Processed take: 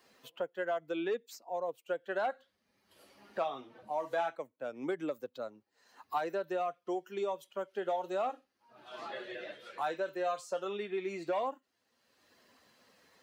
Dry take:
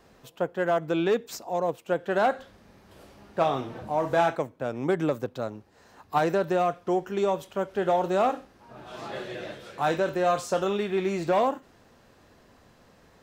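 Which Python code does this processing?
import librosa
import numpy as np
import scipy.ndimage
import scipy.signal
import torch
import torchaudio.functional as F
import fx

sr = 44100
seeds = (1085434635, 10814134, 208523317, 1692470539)

y = fx.bin_expand(x, sr, power=1.5)
y = scipy.signal.sosfilt(scipy.signal.butter(2, 370.0, 'highpass', fs=sr, output='sos'), y)
y = fx.band_squash(y, sr, depth_pct=70)
y = y * 10.0 ** (-6.0 / 20.0)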